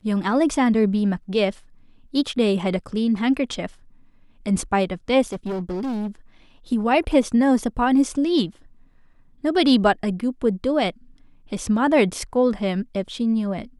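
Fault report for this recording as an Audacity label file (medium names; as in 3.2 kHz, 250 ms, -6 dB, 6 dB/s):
5.280000	6.070000	clipped -23.5 dBFS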